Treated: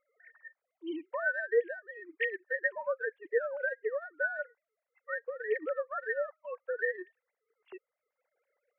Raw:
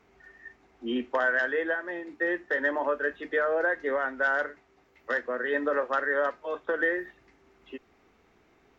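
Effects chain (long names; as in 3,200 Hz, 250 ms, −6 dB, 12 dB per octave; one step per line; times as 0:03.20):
three sine waves on the formant tracks
transient designer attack +3 dB, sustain −8 dB
level −7 dB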